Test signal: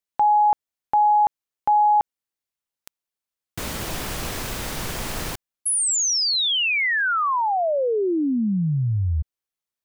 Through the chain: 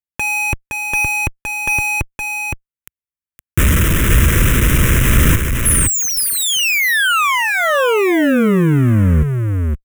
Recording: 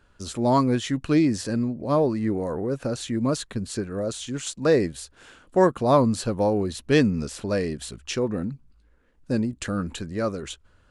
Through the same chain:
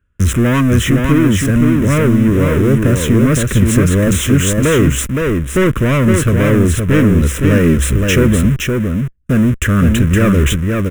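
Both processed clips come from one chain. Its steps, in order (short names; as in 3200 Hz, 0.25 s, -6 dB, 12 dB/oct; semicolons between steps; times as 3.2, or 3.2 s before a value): bell 67 Hz +11 dB 2.2 oct; sample leveller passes 5; in parallel at -10.5 dB: Schmitt trigger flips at -26 dBFS; on the sum: fixed phaser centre 1900 Hz, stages 4; vocal rider within 4 dB 0.5 s; on a send: echo 0.516 s -4 dB; on the sum: gain -2.5 dB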